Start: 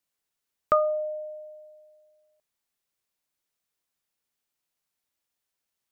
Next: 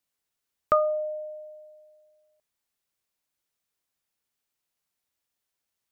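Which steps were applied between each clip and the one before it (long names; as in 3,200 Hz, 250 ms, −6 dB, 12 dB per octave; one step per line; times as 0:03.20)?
parametric band 77 Hz +3.5 dB 0.63 octaves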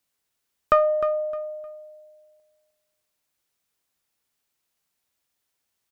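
one-sided soft clipper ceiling −13 dBFS
on a send: repeating echo 307 ms, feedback 26%, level −11.5 dB
on the sum: level +5 dB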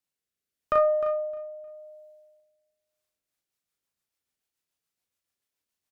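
rotating-speaker cabinet horn 0.85 Hz, later 7 Hz, at 0:02.80
ambience of single reflections 36 ms −3 dB, 59 ms −10 dB
level −7 dB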